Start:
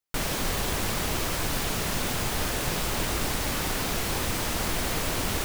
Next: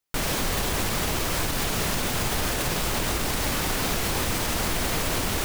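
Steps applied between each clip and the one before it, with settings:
brickwall limiter −20.5 dBFS, peak gain reduction 6 dB
level +4.5 dB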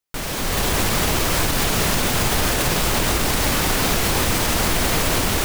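automatic gain control gain up to 8 dB
level −1.5 dB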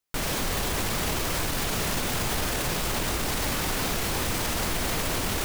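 brickwall limiter −18.5 dBFS, peak gain reduction 9 dB

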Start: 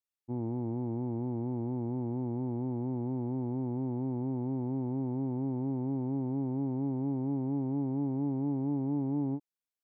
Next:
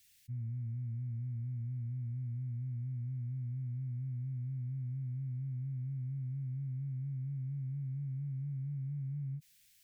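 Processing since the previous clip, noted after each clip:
inverse Chebyshev band-stop filter 280–1,100 Hz, stop band 40 dB
envelope flattener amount 50%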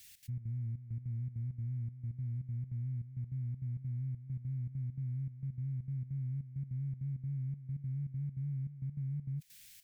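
brickwall limiter −43 dBFS, peak gain reduction 8.5 dB
gate pattern "xx.xx.xxxx..x.x" 199 BPM −12 dB
level +9.5 dB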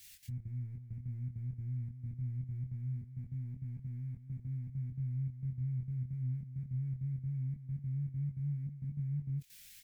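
multi-voice chorus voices 6, 0.21 Hz, delay 22 ms, depth 2.7 ms
level +4.5 dB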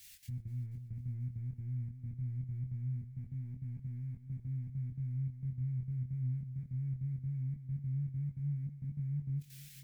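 echo machine with several playback heads 243 ms, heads first and second, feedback 52%, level −23 dB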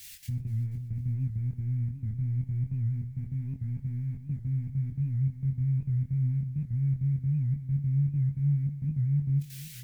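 on a send at −14.5 dB: convolution reverb, pre-delay 3 ms
on the sum: wow of a warped record 78 rpm, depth 160 cents
level +9 dB

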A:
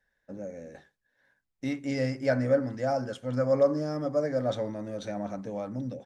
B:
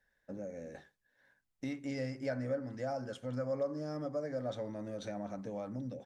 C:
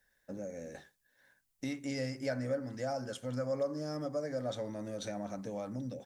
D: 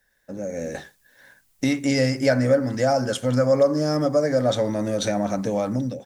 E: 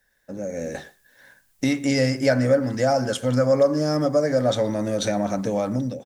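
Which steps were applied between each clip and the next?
downward compressor 2 to 1, threshold −40 dBFS, peak gain reduction 12.5 dB; level −1 dB
high-shelf EQ 5,000 Hz +12 dB; level +1 dB
automatic gain control gain up to 10 dB; level +6 dB
far-end echo of a speakerphone 120 ms, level −20 dB

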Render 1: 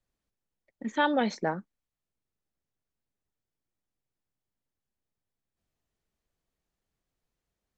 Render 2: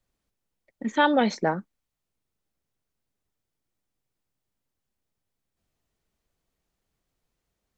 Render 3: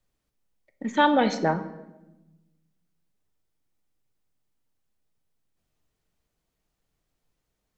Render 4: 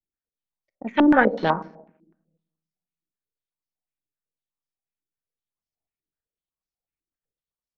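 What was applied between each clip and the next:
notch filter 1,700 Hz, Q 28; level +5 dB
convolution reverb RT60 1.0 s, pre-delay 7 ms, DRR 9 dB
power curve on the samples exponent 1.4; low-pass on a step sequencer 8 Hz 340–5,400 Hz; level +4.5 dB

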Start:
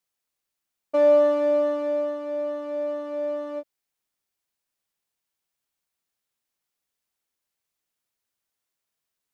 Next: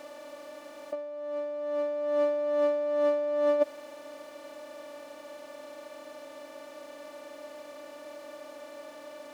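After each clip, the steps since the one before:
compressor on every frequency bin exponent 0.4
low-shelf EQ 210 Hz −4 dB
compressor whose output falls as the input rises −26 dBFS, ratio −0.5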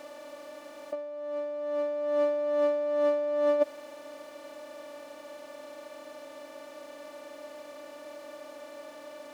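no processing that can be heard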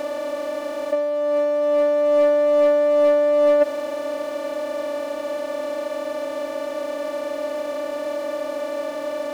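compressor on every frequency bin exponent 0.6
leveller curve on the samples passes 1
level +5 dB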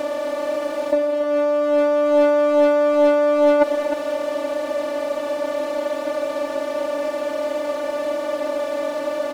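on a send: single-tap delay 309 ms −9 dB
on the sum: highs frequency-modulated by the lows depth 0.27 ms
level +2.5 dB

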